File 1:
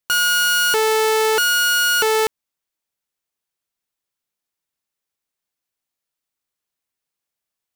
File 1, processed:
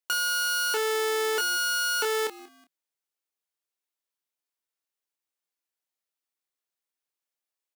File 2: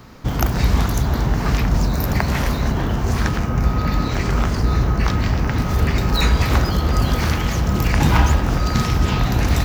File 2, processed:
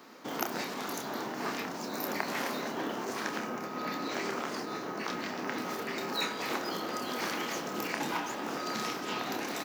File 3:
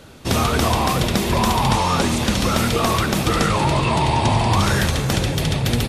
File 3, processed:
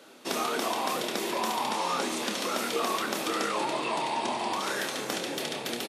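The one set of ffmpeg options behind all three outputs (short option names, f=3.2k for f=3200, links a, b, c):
-filter_complex "[0:a]asplit=3[a][b][c];[b]adelay=185,afreqshift=-88,volume=-23dB[d];[c]adelay=370,afreqshift=-176,volume=-31.6dB[e];[a][d][e]amix=inputs=3:normalize=0,acompressor=threshold=-17dB:ratio=6,highpass=f=260:w=0.5412,highpass=f=260:w=1.3066,asplit=2[f][g];[g]adelay=28,volume=-7.5dB[h];[f][h]amix=inputs=2:normalize=0,volume=-7dB"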